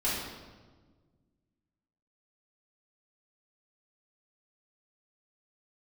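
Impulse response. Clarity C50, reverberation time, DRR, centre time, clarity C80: -0.5 dB, 1.4 s, -9.5 dB, 79 ms, 2.5 dB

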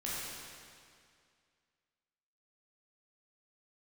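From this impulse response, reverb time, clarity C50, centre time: 2.2 s, -3.5 dB, 0.153 s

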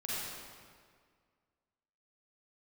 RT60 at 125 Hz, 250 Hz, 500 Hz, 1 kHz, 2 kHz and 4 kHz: 2.0, 2.0, 1.9, 1.9, 1.7, 1.4 s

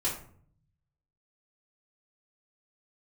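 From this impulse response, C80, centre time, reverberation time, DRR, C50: 10.5 dB, 32 ms, 0.55 s, -9.0 dB, 6.0 dB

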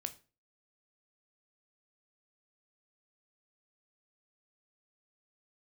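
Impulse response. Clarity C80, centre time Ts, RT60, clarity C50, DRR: 22.0 dB, 5 ms, 0.35 s, 16.5 dB, 8.5 dB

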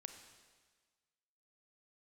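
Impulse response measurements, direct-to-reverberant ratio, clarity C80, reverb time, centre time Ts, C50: 6.5 dB, 9.0 dB, 1.5 s, 24 ms, 7.5 dB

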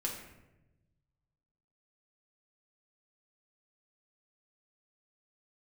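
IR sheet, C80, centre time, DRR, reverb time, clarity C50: 7.5 dB, 37 ms, -1.0 dB, 1.0 s, 4.5 dB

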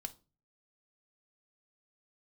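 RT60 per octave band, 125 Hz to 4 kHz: 0.60, 0.45, 0.35, 0.30, 0.25, 0.25 s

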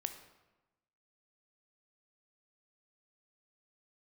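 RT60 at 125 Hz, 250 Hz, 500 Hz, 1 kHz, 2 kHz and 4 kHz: 1.2, 1.2, 1.1, 1.1, 0.90, 0.75 s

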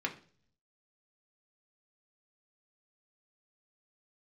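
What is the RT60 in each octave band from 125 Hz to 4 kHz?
0.95, 0.70, 0.50, 0.40, 0.40, 0.50 s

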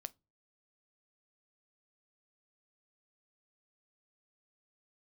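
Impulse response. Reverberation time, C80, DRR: not exponential, 36.0 dB, 15.0 dB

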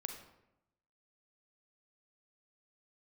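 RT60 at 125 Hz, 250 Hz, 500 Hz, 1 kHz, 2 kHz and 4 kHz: 1.1, 1.0, 0.90, 0.85, 0.75, 0.55 s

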